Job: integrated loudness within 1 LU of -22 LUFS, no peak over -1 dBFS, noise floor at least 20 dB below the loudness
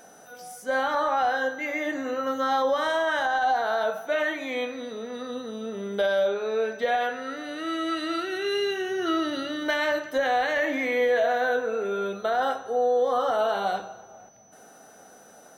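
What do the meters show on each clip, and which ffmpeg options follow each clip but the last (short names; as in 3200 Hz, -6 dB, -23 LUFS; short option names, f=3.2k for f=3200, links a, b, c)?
steady tone 6000 Hz; tone level -56 dBFS; loudness -26.5 LUFS; peak -15.0 dBFS; loudness target -22.0 LUFS
-> -af "bandreject=f=6k:w=30"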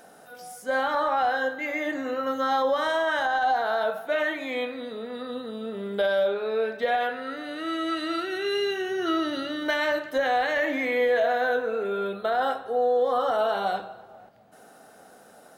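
steady tone none; loudness -26.5 LUFS; peak -15.0 dBFS; loudness target -22.0 LUFS
-> -af "volume=4.5dB"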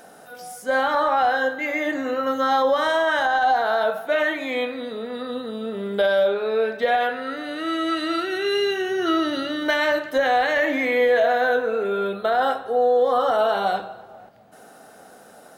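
loudness -22.0 LUFS; peak -10.5 dBFS; noise floor -47 dBFS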